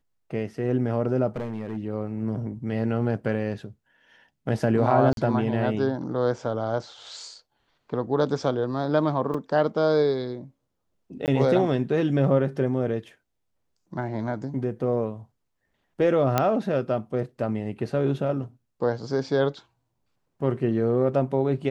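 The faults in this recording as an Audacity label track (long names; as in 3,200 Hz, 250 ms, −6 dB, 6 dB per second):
1.280000	1.770000	clipping −26.5 dBFS
5.130000	5.170000	drop-out 42 ms
9.340000	9.340000	drop-out 4.5 ms
11.260000	11.280000	drop-out 18 ms
16.380000	16.380000	click −7 dBFS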